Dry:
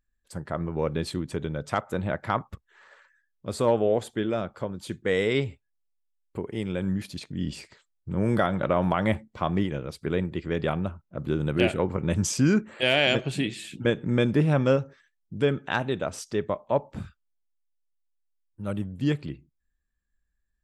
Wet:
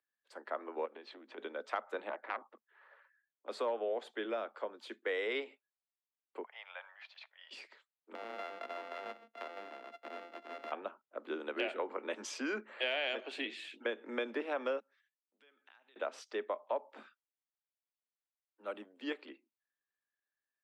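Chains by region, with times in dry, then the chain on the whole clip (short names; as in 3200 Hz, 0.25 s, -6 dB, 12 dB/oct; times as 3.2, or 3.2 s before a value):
0.85–1.38 compressor 10:1, threshold -33 dBFS + air absorption 150 m + Doppler distortion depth 0.12 ms
2.09–3.49 tape spacing loss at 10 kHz 27 dB + core saturation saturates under 1400 Hz
6.43–7.51 steep high-pass 670 Hz 48 dB/oct + air absorption 200 m
8.15–10.72 sample sorter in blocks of 64 samples + tone controls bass +9 dB, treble -8 dB + compressor, threshold -32 dBFS
14.8–15.96 passive tone stack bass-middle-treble 5-5-5 + compressor 20:1, threshold -53 dBFS
whole clip: steep high-pass 220 Hz 96 dB/oct; three-band isolator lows -19 dB, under 420 Hz, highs -20 dB, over 4200 Hz; compressor 4:1, threshold -29 dBFS; gain -3.5 dB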